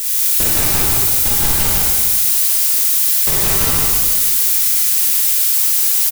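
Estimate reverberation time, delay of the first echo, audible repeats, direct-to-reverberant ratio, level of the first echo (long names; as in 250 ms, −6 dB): 1.6 s, 150 ms, 1, −8.5 dB, −3.0 dB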